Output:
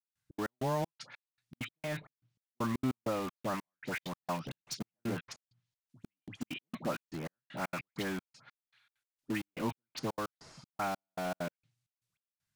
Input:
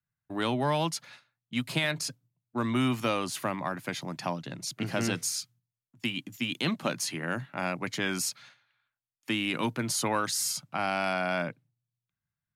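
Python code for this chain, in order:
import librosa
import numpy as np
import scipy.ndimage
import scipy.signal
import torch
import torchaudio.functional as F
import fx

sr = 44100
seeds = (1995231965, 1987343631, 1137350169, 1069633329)

p1 = scipy.ndimage.median_filter(x, 3, mode='constant')
p2 = fx.high_shelf(p1, sr, hz=2100.0, db=10.5)
p3 = fx.dispersion(p2, sr, late='highs', ms=89.0, hz=1400.0)
p4 = fx.env_lowpass_down(p3, sr, base_hz=830.0, full_db=-23.0)
p5 = (np.mod(10.0 ** (32.0 / 20.0) * p4 + 1.0, 2.0) - 1.0) / 10.0 ** (32.0 / 20.0)
p6 = p4 + (p5 * librosa.db_to_amplitude(-7.5))
p7 = fx.step_gate(p6, sr, bpm=196, pattern='..xx.x..xxx..xx.', floor_db=-60.0, edge_ms=4.5)
y = p7 * librosa.db_to_amplitude(-4.0)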